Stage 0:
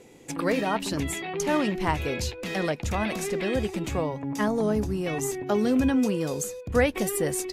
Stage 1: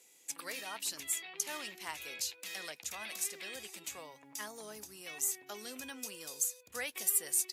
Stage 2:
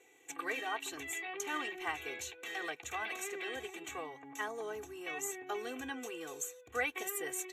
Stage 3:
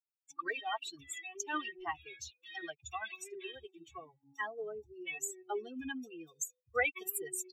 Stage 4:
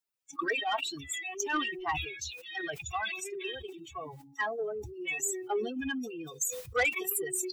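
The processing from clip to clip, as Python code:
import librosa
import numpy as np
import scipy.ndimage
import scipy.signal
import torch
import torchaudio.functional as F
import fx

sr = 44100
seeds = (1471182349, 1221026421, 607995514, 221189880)

y1 = np.diff(x, prepend=0.0)
y2 = scipy.signal.lfilter(np.full(9, 1.0 / 9), 1.0, y1)
y2 = y2 + 0.97 * np.pad(y2, (int(2.6 * sr / 1000.0), 0))[:len(y2)]
y2 = y2 * librosa.db_to_amplitude(5.0)
y3 = fx.bin_expand(y2, sr, power=3.0)
y3 = y3 * librosa.db_to_amplitude(6.5)
y4 = fx.spec_quant(y3, sr, step_db=15)
y4 = 10.0 ** (-28.0 / 20.0) * np.tanh(y4 / 10.0 ** (-28.0 / 20.0))
y4 = fx.sustainer(y4, sr, db_per_s=61.0)
y4 = y4 * librosa.db_to_amplitude(7.0)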